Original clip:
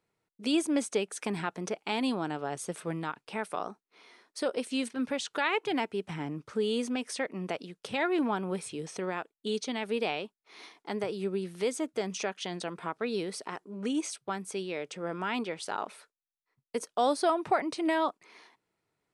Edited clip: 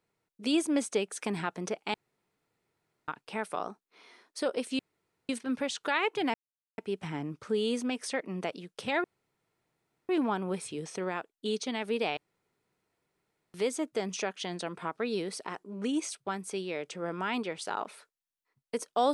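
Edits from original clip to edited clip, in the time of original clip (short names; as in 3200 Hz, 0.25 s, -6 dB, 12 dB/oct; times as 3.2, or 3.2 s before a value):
1.94–3.08 room tone
4.79 insert room tone 0.50 s
5.84 insert silence 0.44 s
8.1 insert room tone 1.05 s
10.18–11.55 room tone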